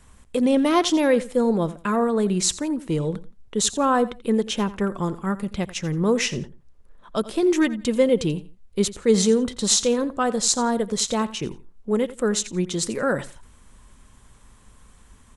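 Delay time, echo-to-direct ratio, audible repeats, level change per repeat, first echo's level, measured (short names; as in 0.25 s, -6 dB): 86 ms, -17.0 dB, 2, -13.0 dB, -17.0 dB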